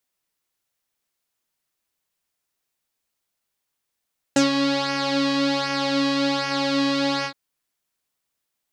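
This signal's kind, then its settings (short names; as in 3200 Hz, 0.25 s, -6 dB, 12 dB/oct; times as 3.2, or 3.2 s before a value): synth patch with pulse-width modulation C#4, interval 0 st, detune 23 cents, sub -19 dB, filter lowpass, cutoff 4000 Hz, Q 3.3, filter envelope 1 oct, filter decay 0.08 s, filter sustain 15%, attack 4.2 ms, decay 0.13 s, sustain -6 dB, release 0.08 s, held 2.89 s, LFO 1.3 Hz, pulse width 23%, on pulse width 16%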